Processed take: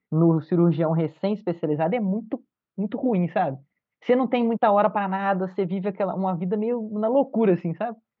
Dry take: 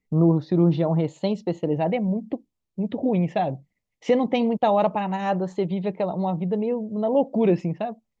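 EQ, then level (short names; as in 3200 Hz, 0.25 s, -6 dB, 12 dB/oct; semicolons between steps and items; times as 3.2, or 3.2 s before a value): BPF 120–3500 Hz; air absorption 100 m; bell 1400 Hz +11 dB 0.63 oct; 0.0 dB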